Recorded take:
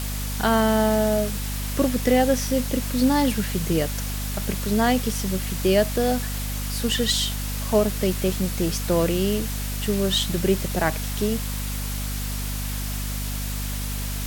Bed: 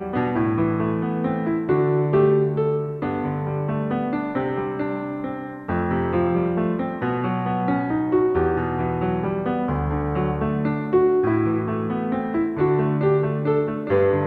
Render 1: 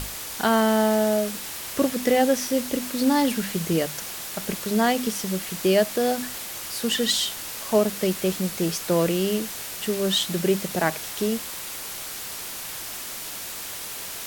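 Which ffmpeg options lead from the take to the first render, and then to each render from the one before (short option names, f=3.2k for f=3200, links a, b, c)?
-af "bandreject=f=50:t=h:w=6,bandreject=f=100:t=h:w=6,bandreject=f=150:t=h:w=6,bandreject=f=200:t=h:w=6,bandreject=f=250:t=h:w=6"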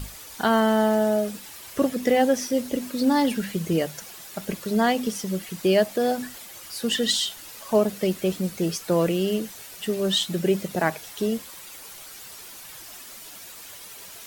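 -af "afftdn=nr=10:nf=-35"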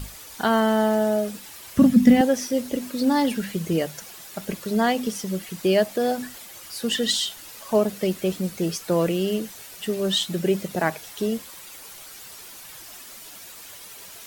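-filter_complex "[0:a]asettb=1/sr,asplit=3[a][b][c];[a]atrim=end=1.774[d];[b]atrim=start=1.77:end=2.21,asetpts=PTS-STARTPTS,afade=t=in:d=0.004:c=qsin,afade=t=out:st=0.436:d=0.004:c=qsin,lowshelf=f=290:t=q:w=3:g=11.5[e];[c]atrim=start=2.206[f];[d][e]acrossfade=d=0.004:c1=hsin:c2=qsin[g];[g][f]acrossfade=d=0.004:c1=qsin:c2=hsin"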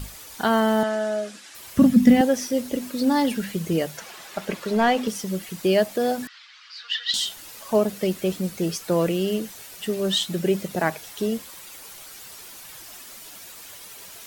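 -filter_complex "[0:a]asettb=1/sr,asplit=3[a][b][c];[a]atrim=end=0.834[d];[b]atrim=start=0.83:end=1.55,asetpts=PTS-STARTPTS,afade=t=in:d=0.004:c=qsin,afade=t=out:st=0.716:d=0.004:c=qsin,highpass=330,equalizer=f=460:t=q:w=4:g=-8,equalizer=f=890:t=q:w=4:g=-7,equalizer=f=1.6k:t=q:w=4:g=4,equalizer=f=8.6k:t=q:w=4:g=-3,lowpass=f=9k:w=0.5412,lowpass=f=9k:w=1.3066[e];[c]atrim=start=1.546[f];[d][e]acrossfade=d=0.004:c1=hsin:c2=qsin[g];[g][f]acrossfade=d=0.004:c1=qsin:c2=hsin,asettb=1/sr,asplit=3[h][i][j];[h]atrim=end=3.974[k];[i]atrim=start=3.97:end=5.08,asetpts=PTS-STARTPTS,afade=t=in:d=0.004:c=qsin,afade=t=out:st=1.106:d=0.004:c=qsin,asplit=2[l][m];[m]highpass=f=720:p=1,volume=14dB,asoftclip=type=tanh:threshold=-9dB[n];[l][n]amix=inputs=2:normalize=0,lowpass=f=1.9k:p=1,volume=-6dB[o];[j]atrim=start=5.076[p];[k][o]acrossfade=d=0.004:c1=hsin:c2=qsin[q];[q][p]acrossfade=d=0.004:c1=qsin:c2=hsin,asettb=1/sr,asplit=3[r][s][t];[r]atrim=end=6.274[u];[s]atrim=start=6.27:end=7.14,asetpts=PTS-STARTPTS,afade=t=in:d=0.004:c=qsin,afade=t=out:st=0.866:d=0.004:c=qsin,asuperpass=centerf=2400:order=8:qfactor=0.65[v];[t]atrim=start=7.136[w];[u][v]acrossfade=d=0.004:c1=hsin:c2=qsin[x];[x][w]acrossfade=d=0.004:c1=qsin:c2=hsin"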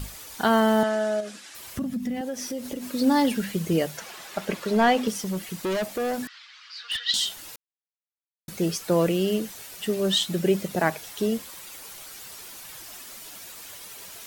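-filter_complex "[0:a]asettb=1/sr,asplit=3[a][b][c];[a]atrim=end=1.204[d];[b]atrim=start=1.2:end=2.91,asetpts=PTS-STARTPTS,afade=t=in:d=0.004:c=qsin,afade=t=out:st=1.706:d=0.004:c=qsin,acompressor=threshold=-29dB:ratio=4:attack=3.2:release=140:knee=1:detection=peak[e];[c]atrim=start=2.906[f];[d][e]acrossfade=d=0.004:c1=hsin:c2=qsin[g];[g][f]acrossfade=d=0.004:c1=qsin:c2=hsin,asettb=1/sr,asplit=3[h][i][j];[h]atrim=end=5.234[k];[i]atrim=start=5.23:end=7,asetpts=PTS-STARTPTS,afade=t=in:d=0.004:c=qsin,afade=t=out:st=1.766:d=0.004:c=qsin,asoftclip=type=hard:threshold=-24.5dB[l];[j]atrim=start=6.996[m];[k][l]acrossfade=d=0.004:c1=hsin:c2=qsin[n];[n][m]acrossfade=d=0.004:c1=qsin:c2=hsin,asplit=3[o][p][q];[o]atrim=end=7.56,asetpts=PTS-STARTPTS,afade=t=out:st=7.556:d=0.004:c=hsin[r];[p]atrim=start=7.56:end=8.48,asetpts=PTS-STARTPTS,volume=0[s];[q]atrim=start=8.48,asetpts=PTS-STARTPTS,afade=t=in:d=0.004:c=hsin[t];[r][s][t]concat=n=3:v=0:a=1"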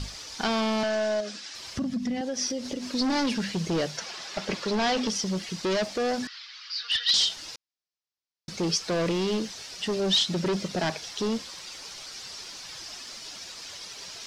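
-af "asoftclip=type=hard:threshold=-23.5dB,lowpass=f=5.2k:t=q:w=2.8"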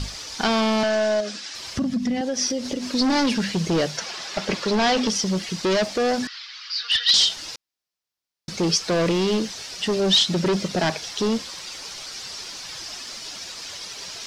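-af "volume=5.5dB"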